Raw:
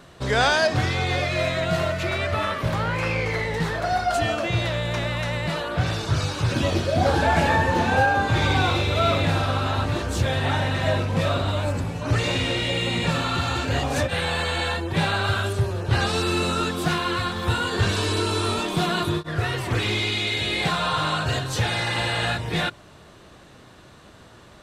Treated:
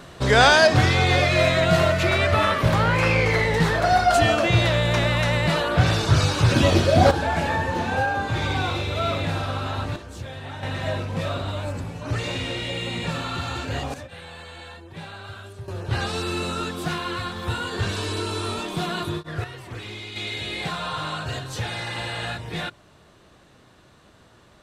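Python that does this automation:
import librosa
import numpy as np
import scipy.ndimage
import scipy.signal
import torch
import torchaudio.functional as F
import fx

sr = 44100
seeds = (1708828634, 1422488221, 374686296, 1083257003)

y = fx.gain(x, sr, db=fx.steps((0.0, 5.0), (7.11, -4.0), (9.96, -12.5), (10.63, -4.5), (13.94, -15.5), (15.68, -4.0), (19.44, -12.0), (20.16, -5.5)))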